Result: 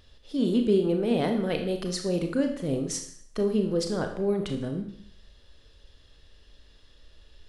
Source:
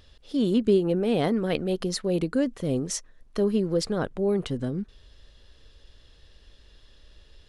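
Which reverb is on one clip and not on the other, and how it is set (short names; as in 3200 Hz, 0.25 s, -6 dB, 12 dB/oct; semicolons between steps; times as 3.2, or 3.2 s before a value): Schroeder reverb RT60 0.62 s, combs from 26 ms, DRR 4.5 dB; gain -2.5 dB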